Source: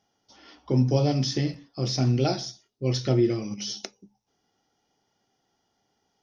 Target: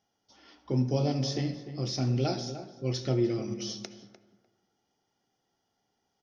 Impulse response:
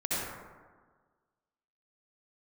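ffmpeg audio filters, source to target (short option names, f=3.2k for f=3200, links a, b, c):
-filter_complex "[0:a]asplit=2[a][b];[b]adelay=299,lowpass=f=1.8k:p=1,volume=-11dB,asplit=2[c][d];[d]adelay=299,lowpass=f=1.8k:p=1,volume=0.17[e];[a][c][e]amix=inputs=3:normalize=0,asplit=2[f][g];[1:a]atrim=start_sample=2205[h];[g][h]afir=irnorm=-1:irlink=0,volume=-20dB[i];[f][i]amix=inputs=2:normalize=0,volume=-6dB"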